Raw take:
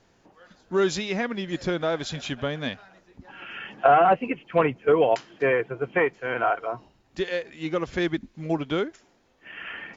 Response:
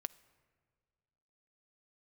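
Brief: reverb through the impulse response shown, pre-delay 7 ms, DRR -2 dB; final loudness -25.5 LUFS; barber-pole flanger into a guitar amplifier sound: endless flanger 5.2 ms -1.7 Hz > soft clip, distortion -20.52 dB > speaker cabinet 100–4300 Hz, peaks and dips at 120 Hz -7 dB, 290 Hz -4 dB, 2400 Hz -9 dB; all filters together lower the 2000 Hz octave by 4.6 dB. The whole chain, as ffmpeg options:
-filter_complex "[0:a]equalizer=f=2k:t=o:g=-3.5,asplit=2[a][b];[1:a]atrim=start_sample=2205,adelay=7[c];[b][c]afir=irnorm=-1:irlink=0,volume=4.5dB[d];[a][d]amix=inputs=2:normalize=0,asplit=2[e][f];[f]adelay=5.2,afreqshift=-1.7[g];[e][g]amix=inputs=2:normalize=1,asoftclip=threshold=-7.5dB,highpass=100,equalizer=f=120:t=q:w=4:g=-7,equalizer=f=290:t=q:w=4:g=-4,equalizer=f=2.4k:t=q:w=4:g=-9,lowpass=f=4.3k:w=0.5412,lowpass=f=4.3k:w=1.3066,volume=1dB"

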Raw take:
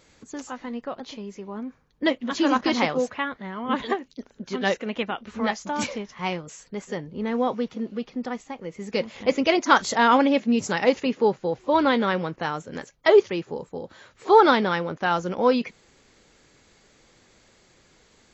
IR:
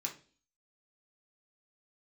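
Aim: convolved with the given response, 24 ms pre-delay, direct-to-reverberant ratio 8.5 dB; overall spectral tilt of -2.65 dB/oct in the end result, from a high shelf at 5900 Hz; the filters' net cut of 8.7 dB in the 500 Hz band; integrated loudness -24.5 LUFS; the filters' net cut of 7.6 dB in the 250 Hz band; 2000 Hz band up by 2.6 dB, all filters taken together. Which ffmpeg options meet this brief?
-filter_complex "[0:a]equalizer=f=250:t=o:g=-6.5,equalizer=f=500:t=o:g=-9,equalizer=f=2k:t=o:g=3.5,highshelf=f=5.9k:g=5,asplit=2[a][b];[1:a]atrim=start_sample=2205,adelay=24[c];[b][c]afir=irnorm=-1:irlink=0,volume=-9dB[d];[a][d]amix=inputs=2:normalize=0,volume=1dB"

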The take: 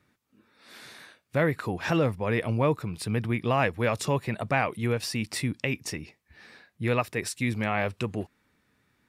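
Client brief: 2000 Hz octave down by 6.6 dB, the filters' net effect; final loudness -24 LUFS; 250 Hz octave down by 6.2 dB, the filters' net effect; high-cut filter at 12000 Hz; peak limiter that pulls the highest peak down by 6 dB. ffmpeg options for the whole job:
-af "lowpass=12k,equalizer=f=250:t=o:g=-8.5,equalizer=f=2k:t=o:g=-8.5,volume=9dB,alimiter=limit=-12dB:level=0:latency=1"

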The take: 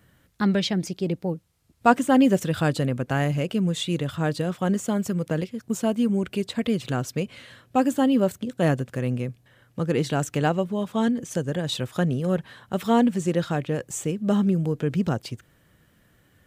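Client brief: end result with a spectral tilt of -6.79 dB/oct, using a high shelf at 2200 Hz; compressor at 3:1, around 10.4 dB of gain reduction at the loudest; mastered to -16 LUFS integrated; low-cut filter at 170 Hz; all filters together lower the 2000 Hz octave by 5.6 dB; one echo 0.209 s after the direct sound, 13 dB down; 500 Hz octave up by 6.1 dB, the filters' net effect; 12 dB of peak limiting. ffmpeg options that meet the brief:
-af "highpass=170,equalizer=f=500:t=o:g=8,equalizer=f=2k:t=o:g=-5,highshelf=f=2.2k:g=-7,acompressor=threshold=-23dB:ratio=3,alimiter=limit=-22dB:level=0:latency=1,aecho=1:1:209:0.224,volume=16dB"

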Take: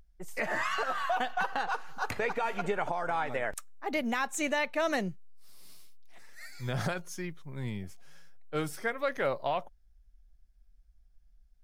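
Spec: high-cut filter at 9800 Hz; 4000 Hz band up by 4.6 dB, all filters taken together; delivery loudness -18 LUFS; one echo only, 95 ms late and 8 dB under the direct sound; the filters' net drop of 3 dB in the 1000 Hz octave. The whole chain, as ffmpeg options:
-af "lowpass=9.8k,equalizer=f=1k:t=o:g=-4.5,equalizer=f=4k:t=o:g=6.5,aecho=1:1:95:0.398,volume=15dB"

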